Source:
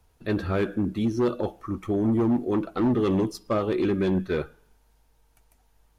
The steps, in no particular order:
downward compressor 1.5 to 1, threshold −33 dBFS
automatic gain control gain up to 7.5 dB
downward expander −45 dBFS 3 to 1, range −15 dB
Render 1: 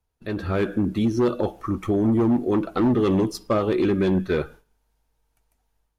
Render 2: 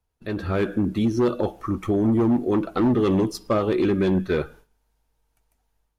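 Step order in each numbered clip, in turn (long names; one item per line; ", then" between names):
downward compressor, then downward expander, then automatic gain control
downward expander, then downward compressor, then automatic gain control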